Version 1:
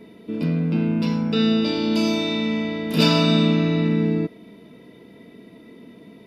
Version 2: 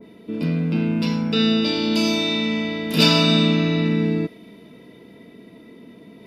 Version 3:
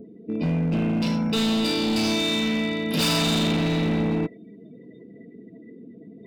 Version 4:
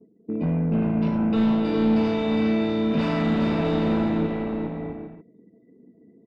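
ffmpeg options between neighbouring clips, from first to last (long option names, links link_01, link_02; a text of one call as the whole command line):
ffmpeg -i in.wav -af "areverse,acompressor=mode=upward:threshold=-41dB:ratio=2.5,areverse,adynamicequalizer=threshold=0.0141:dfrequency=1700:dqfactor=0.7:tfrequency=1700:tqfactor=0.7:attack=5:release=100:ratio=0.375:range=2.5:mode=boostabove:tftype=highshelf" out.wav
ffmpeg -i in.wav -af "acompressor=mode=upward:threshold=-39dB:ratio=2.5,afftdn=noise_reduction=29:noise_floor=-40,asoftclip=type=hard:threshold=-20dB" out.wav
ffmpeg -i in.wav -filter_complex "[0:a]agate=range=-33dB:threshold=-35dB:ratio=3:detection=peak,lowpass=1500,asplit=2[link_01][link_02];[link_02]aecho=0:1:410|656|803.6|892.2|945.3:0.631|0.398|0.251|0.158|0.1[link_03];[link_01][link_03]amix=inputs=2:normalize=0" out.wav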